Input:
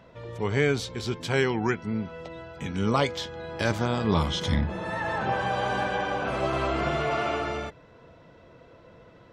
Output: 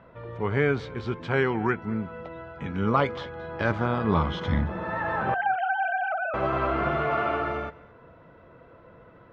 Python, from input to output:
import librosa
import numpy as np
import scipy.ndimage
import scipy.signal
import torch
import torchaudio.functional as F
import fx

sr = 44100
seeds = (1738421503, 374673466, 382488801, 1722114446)

y = fx.sine_speech(x, sr, at=(5.34, 6.34))
y = scipy.signal.sosfilt(scipy.signal.butter(2, 2200.0, 'lowpass', fs=sr, output='sos'), y)
y = fx.peak_eq(y, sr, hz=1300.0, db=5.0, octaves=0.67)
y = y + 10.0 ** (-21.5 / 20.0) * np.pad(y, (int(221 * sr / 1000.0), 0))[:len(y)]